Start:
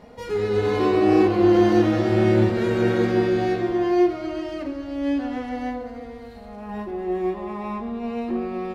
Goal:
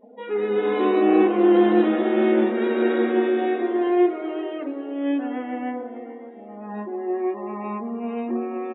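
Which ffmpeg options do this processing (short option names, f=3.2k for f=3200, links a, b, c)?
-filter_complex "[0:a]afftfilt=real='re*between(b*sr/4096,200,3900)':imag='im*between(b*sr/4096,200,3900)':win_size=4096:overlap=0.75,afftdn=nr=26:nf=-43,asplit=5[a][b][c][d][e];[b]adelay=430,afreqshift=36,volume=-19dB[f];[c]adelay=860,afreqshift=72,volume=-24.7dB[g];[d]adelay=1290,afreqshift=108,volume=-30.4dB[h];[e]adelay=1720,afreqshift=144,volume=-36dB[i];[a][f][g][h][i]amix=inputs=5:normalize=0"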